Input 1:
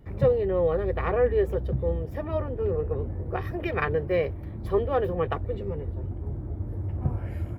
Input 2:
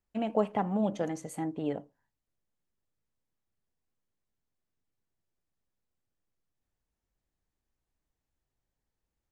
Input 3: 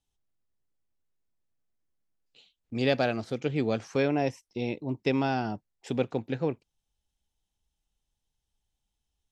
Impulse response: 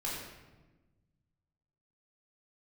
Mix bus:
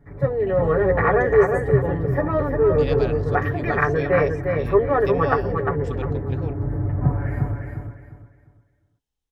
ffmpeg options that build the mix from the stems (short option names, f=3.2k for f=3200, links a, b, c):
-filter_complex "[0:a]highshelf=f=2.3k:t=q:w=3:g=-7.5,aecho=1:1:7:0.88,dynaudnorm=f=110:g=5:m=10.5dB,volume=-4dB,asplit=2[a][b];[b]volume=-5dB[c];[1:a]adelay=250,volume=-9dB,asplit=2[d][e];[e]volume=-6dB[f];[2:a]volume=-5.5dB[g];[3:a]atrim=start_sample=2205[h];[f][h]afir=irnorm=-1:irlink=0[i];[c]aecho=0:1:352|704|1056|1408:1|0.28|0.0784|0.022[j];[a][d][g][i][j]amix=inputs=5:normalize=0"